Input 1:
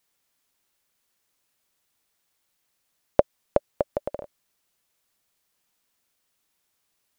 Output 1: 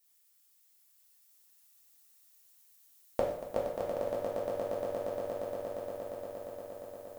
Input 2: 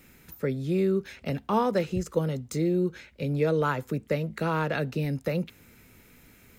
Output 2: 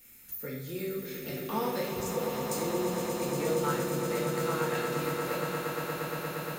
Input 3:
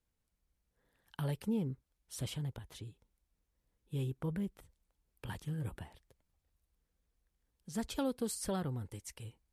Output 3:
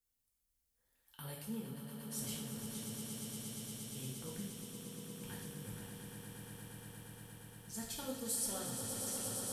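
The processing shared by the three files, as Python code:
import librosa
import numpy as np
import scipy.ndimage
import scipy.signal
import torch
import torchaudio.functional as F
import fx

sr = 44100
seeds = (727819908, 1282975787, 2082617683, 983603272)

y = librosa.effects.preemphasis(x, coef=0.8, zi=[0.0])
y = fx.echo_swell(y, sr, ms=117, loudest=8, wet_db=-8.5)
y = fx.rev_double_slope(y, sr, seeds[0], early_s=0.64, late_s=1.6, knee_db=-18, drr_db=-3.5)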